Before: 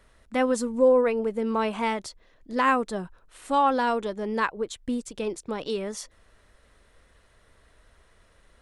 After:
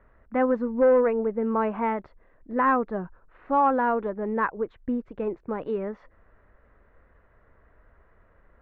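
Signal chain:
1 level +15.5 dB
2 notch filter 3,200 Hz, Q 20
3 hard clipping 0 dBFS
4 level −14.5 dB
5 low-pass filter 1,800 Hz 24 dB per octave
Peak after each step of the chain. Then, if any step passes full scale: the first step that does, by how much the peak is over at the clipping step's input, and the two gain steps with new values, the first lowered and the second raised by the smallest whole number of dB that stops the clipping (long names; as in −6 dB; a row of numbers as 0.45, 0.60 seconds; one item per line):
+5.5, +5.5, 0.0, −14.5, −13.5 dBFS
step 1, 5.5 dB
step 1 +9.5 dB, step 4 −8.5 dB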